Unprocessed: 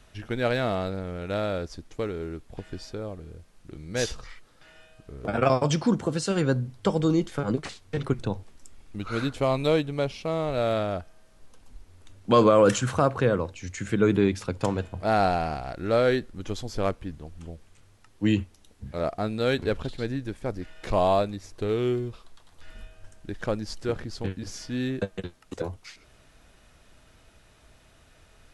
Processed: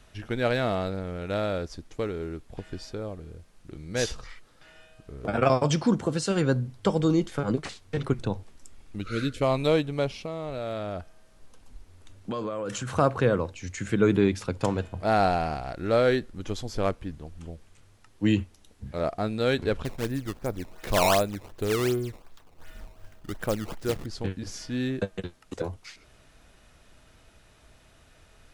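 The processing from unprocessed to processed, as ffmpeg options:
-filter_complex "[0:a]asettb=1/sr,asplit=3[s0][s1][s2];[s0]atrim=end=9.014[s3];[s1]atrim=start=9.01:end=9.42,asetpts=PTS-STARTPTS,afade=t=in:d=0.004:c=qsin,afade=t=out:st=0.406:d=0.004:c=qsin,asuperstop=centerf=860:order=4:qfactor=1[s4];[s2]atrim=start=9.416[s5];[s3][s4]acrossfade=d=0.004:c1=hsin:c2=qsin[s6];[s6][s5]acrossfade=d=0.004:c1=qsin:c2=hsin,asettb=1/sr,asplit=3[s7][s8][s9];[s7]atrim=end=10.214[s10];[s8]atrim=start=10.21:end=12.96,asetpts=PTS-STARTPTS,afade=t=in:d=0.004:c=qsin,afade=t=out:st=2.746:d=0.004:c=qsin,acompressor=threshold=0.0355:ratio=6:attack=3.2:release=140:knee=1:detection=peak[s11];[s9]atrim=start=12.956[s12];[s10][s11]acrossfade=d=0.004:c1=hsin:c2=qsin[s13];[s13][s12]acrossfade=d=0.004:c1=qsin:c2=hsin,asettb=1/sr,asplit=3[s14][s15][s16];[s14]atrim=end=19.854[s17];[s15]atrim=start=19.85:end=24.06,asetpts=PTS-STARTPTS,afade=t=in:d=0.004:c=qsin,afade=t=out:st=4.206:d=0.004:c=qsin,acrusher=samples=16:mix=1:aa=0.000001:lfo=1:lforange=25.6:lforate=2.7[s18];[s16]atrim=start=24.056[s19];[s17][s18]acrossfade=d=0.004:c1=hsin:c2=qsin[s20];[s20][s19]acrossfade=d=0.004:c1=qsin:c2=hsin"

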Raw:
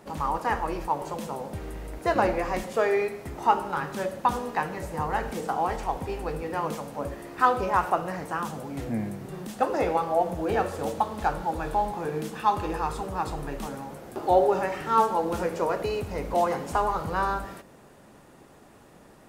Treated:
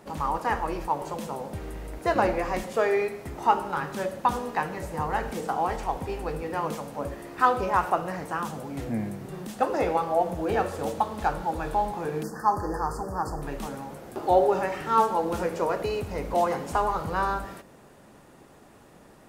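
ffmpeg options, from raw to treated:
-filter_complex "[0:a]asettb=1/sr,asplit=3[s0][s1][s2];[s0]atrim=end=12.234[s3];[s1]atrim=start=12.23:end=13.42,asetpts=PTS-STARTPTS,afade=t=in:d=0.004:c=qsin,afade=t=out:st=1.186:d=0.004:c=qsin,asuperstop=centerf=2900:order=20:qfactor=1.1[s4];[s2]atrim=start=13.416[s5];[s3][s4]acrossfade=d=0.004:c1=hsin:c2=qsin[s6];[s6][s5]acrossfade=d=0.004:c1=qsin:c2=hsin"

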